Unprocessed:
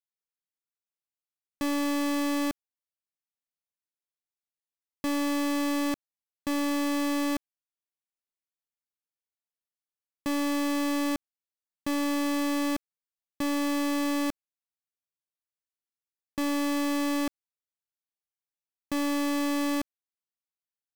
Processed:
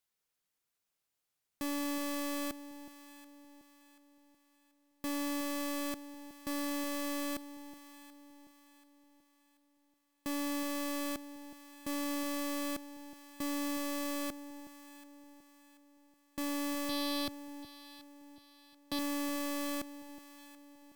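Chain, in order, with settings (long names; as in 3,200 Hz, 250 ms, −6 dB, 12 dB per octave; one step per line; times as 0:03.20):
0:16.89–0:18.99: graphic EQ with 15 bands 100 Hz −7 dB, 4,000 Hz +5 dB, 16,000 Hz −5 dB
in parallel at −9 dB: sine wavefolder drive 17 dB, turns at −21.5 dBFS
on the sum: delay that swaps between a low-pass and a high-pass 367 ms, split 910 Hz, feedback 62%, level −12 dB
level −4.5 dB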